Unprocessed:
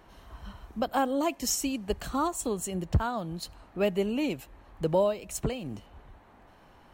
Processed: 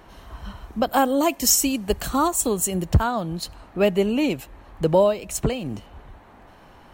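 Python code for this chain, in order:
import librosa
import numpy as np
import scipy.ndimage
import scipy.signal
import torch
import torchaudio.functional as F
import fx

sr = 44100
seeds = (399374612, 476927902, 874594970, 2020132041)

y = fx.high_shelf(x, sr, hz=8500.0, db=10.0, at=(0.87, 3.04))
y = y * 10.0 ** (7.5 / 20.0)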